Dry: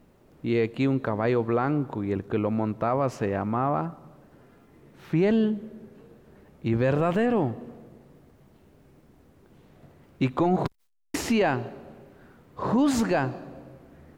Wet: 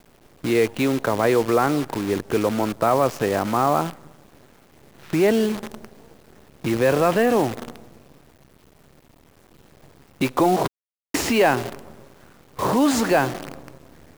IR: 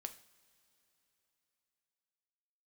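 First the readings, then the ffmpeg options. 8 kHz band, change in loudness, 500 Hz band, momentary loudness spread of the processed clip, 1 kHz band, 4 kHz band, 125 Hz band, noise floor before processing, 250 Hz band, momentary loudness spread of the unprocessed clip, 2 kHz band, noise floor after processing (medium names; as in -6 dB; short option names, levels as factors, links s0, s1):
+10.0 dB, +5.0 dB, +6.0 dB, 13 LU, +7.0 dB, +9.5 dB, -0.5 dB, -58 dBFS, +2.5 dB, 12 LU, +7.5 dB, -56 dBFS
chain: -filter_complex "[0:a]acrossover=split=290[s0][s1];[s0]acompressor=threshold=0.0158:ratio=5[s2];[s2][s1]amix=inputs=2:normalize=0,acrusher=bits=7:dc=4:mix=0:aa=0.000001,volume=2.24"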